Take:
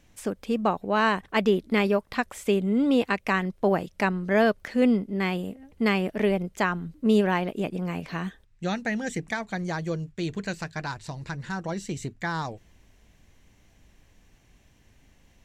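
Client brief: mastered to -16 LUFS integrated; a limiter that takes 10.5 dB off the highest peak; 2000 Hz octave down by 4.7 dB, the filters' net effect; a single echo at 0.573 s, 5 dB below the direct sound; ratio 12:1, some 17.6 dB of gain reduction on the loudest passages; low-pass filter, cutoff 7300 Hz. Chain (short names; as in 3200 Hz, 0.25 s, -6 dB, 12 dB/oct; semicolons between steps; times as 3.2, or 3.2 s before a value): LPF 7300 Hz; bell 2000 Hz -6 dB; compressor 12:1, threshold -35 dBFS; limiter -33 dBFS; echo 0.573 s -5 dB; gain +25.5 dB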